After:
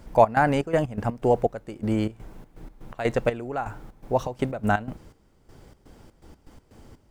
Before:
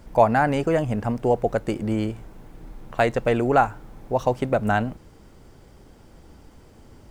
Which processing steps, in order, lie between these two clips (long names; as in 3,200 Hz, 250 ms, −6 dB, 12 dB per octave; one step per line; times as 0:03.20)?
gate pattern "xx.xx.x.x.xx..." 123 BPM −12 dB